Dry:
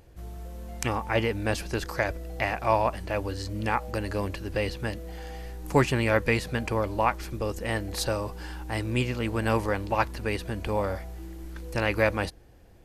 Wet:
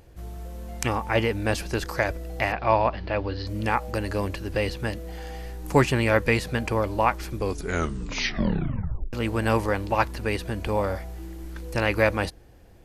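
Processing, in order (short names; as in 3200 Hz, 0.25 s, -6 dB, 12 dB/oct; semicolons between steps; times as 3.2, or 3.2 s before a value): 2.52–3.47 steep low-pass 4900 Hz 48 dB/oct; 7.33 tape stop 1.80 s; gain +2.5 dB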